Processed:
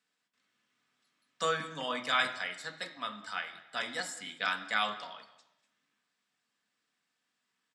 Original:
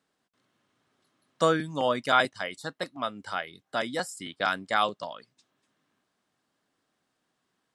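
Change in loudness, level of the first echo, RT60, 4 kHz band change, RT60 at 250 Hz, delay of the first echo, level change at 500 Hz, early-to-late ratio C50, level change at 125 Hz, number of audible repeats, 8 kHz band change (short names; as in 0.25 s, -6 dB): -5.5 dB, -21.0 dB, 1.0 s, -1.5 dB, 0.80 s, 0.198 s, -10.5 dB, 11.0 dB, -12.0 dB, 1, -1.5 dB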